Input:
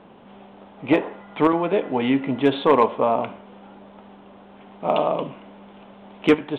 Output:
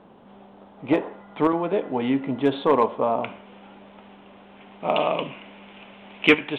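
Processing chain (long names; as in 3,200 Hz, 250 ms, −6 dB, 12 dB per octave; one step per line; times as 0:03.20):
parametric band 2,500 Hz −4 dB 1.1 octaves, from 0:03.24 +7.5 dB, from 0:05.00 +13.5 dB
level −2.5 dB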